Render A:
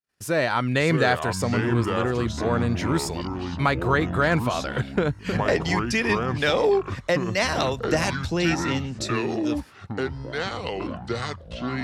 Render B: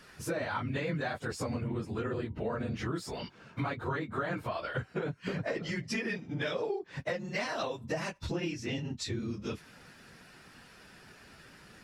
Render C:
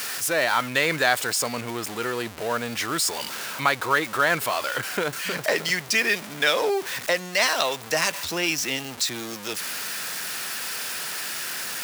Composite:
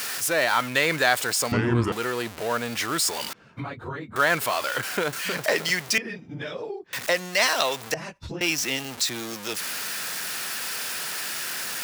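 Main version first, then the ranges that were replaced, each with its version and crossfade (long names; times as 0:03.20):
C
0:01.52–0:01.92: punch in from A
0:03.33–0:04.16: punch in from B
0:05.98–0:06.93: punch in from B
0:07.94–0:08.41: punch in from B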